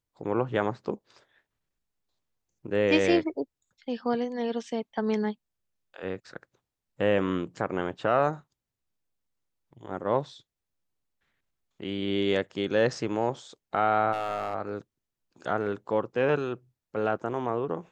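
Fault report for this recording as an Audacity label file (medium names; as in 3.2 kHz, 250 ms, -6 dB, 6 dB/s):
14.120000	14.550000	clipped -25 dBFS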